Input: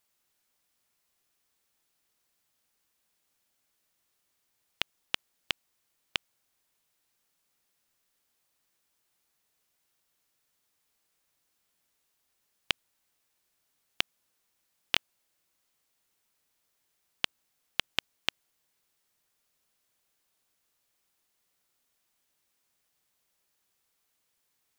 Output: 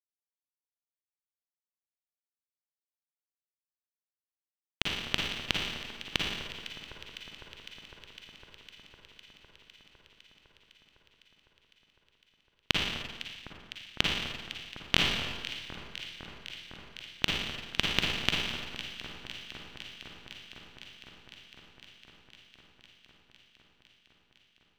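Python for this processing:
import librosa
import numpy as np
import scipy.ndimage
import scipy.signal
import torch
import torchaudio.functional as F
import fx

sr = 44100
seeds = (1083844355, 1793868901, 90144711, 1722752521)

p1 = scipy.signal.sosfilt(scipy.signal.butter(2, 5900.0, 'lowpass', fs=sr, output='sos'), x)
p2 = fx.bass_treble(p1, sr, bass_db=14, treble_db=1)
p3 = np.sign(p2) * np.maximum(np.abs(p2) - 10.0 ** (-29.5 / 20.0), 0.0)
p4 = p3 + fx.echo_alternate(p3, sr, ms=253, hz=1700.0, feedback_pct=88, wet_db=-12.0, dry=0)
p5 = fx.rev_schroeder(p4, sr, rt60_s=1.3, comb_ms=38, drr_db=-2.0)
y = F.gain(torch.from_numpy(p5), 1.5).numpy()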